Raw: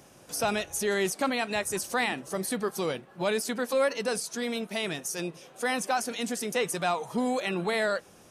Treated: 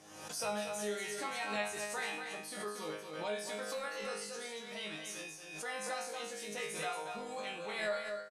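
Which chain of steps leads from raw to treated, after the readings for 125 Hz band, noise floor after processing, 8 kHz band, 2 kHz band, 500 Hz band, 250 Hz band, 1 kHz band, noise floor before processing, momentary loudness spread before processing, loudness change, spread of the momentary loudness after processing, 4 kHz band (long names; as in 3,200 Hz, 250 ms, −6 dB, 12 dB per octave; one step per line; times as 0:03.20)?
−14.5 dB, −49 dBFS, −9.0 dB, −8.5 dB, −10.5 dB, −15.5 dB, −9.5 dB, −55 dBFS, 5 LU, −10.0 dB, 6 LU, −8.0 dB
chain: low-pass filter 10,000 Hz 12 dB per octave
noise gate −50 dBFS, range −15 dB
low-shelf EQ 290 Hz −9 dB
resonators tuned to a chord G#2 fifth, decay 0.56 s
on a send: single-tap delay 233 ms −6 dB
on the sum: background raised ahead of every attack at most 53 dB per second
level +5.5 dB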